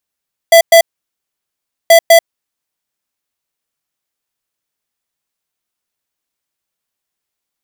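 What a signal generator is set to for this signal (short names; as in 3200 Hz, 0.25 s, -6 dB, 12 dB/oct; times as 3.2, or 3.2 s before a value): beep pattern square 667 Hz, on 0.09 s, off 0.11 s, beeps 2, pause 1.09 s, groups 2, -4 dBFS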